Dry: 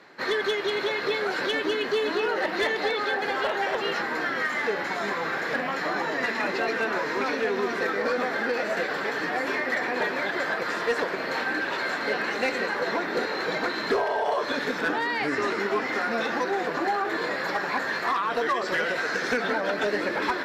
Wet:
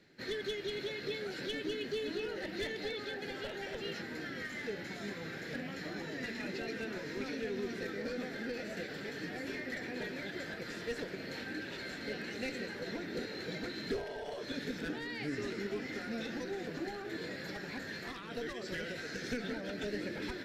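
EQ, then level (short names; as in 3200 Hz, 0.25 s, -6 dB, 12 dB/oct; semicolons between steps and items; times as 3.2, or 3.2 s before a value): passive tone stack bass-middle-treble 10-0-1; bell 1100 Hz -8 dB 0.29 oct; +12.0 dB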